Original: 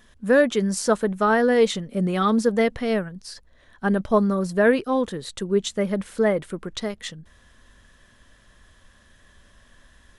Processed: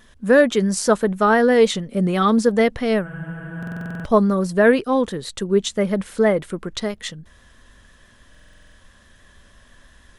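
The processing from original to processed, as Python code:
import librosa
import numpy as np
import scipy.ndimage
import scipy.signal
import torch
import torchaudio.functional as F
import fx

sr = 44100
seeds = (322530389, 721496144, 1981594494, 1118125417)

y = fx.vibrato(x, sr, rate_hz=6.1, depth_cents=25.0)
y = fx.spec_freeze(y, sr, seeds[0], at_s=3.08, hold_s=0.78)
y = fx.buffer_glitch(y, sr, at_s=(3.58, 8.3), block=2048, repeats=9)
y = F.gain(torch.from_numpy(y), 3.5).numpy()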